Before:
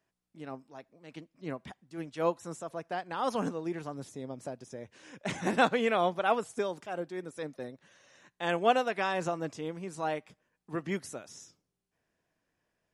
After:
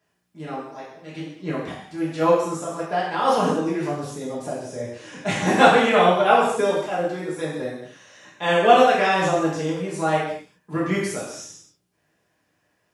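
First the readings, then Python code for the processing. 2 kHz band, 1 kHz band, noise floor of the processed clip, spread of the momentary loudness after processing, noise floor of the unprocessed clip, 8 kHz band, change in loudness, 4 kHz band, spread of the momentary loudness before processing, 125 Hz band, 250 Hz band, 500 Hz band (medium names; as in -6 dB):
+11.5 dB, +12.5 dB, -70 dBFS, 19 LU, -85 dBFS, +12.0 dB, +12.0 dB, +12.0 dB, 19 LU, +12.0 dB, +11.5 dB, +12.0 dB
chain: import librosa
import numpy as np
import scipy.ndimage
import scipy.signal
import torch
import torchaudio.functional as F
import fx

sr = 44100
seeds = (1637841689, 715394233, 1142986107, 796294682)

y = scipy.signal.sosfilt(scipy.signal.butter(2, 80.0, 'highpass', fs=sr, output='sos'), x)
y = fx.rev_gated(y, sr, seeds[0], gate_ms=280, shape='falling', drr_db=-8.0)
y = y * librosa.db_to_amplitude(3.5)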